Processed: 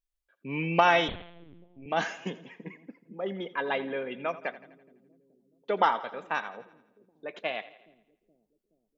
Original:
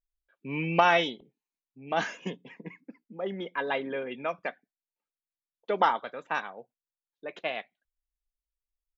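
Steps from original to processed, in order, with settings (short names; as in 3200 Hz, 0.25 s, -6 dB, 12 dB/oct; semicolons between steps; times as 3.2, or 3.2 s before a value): split-band echo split 370 Hz, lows 0.423 s, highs 84 ms, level -16 dB; 1.08–1.86 LPC vocoder at 8 kHz pitch kept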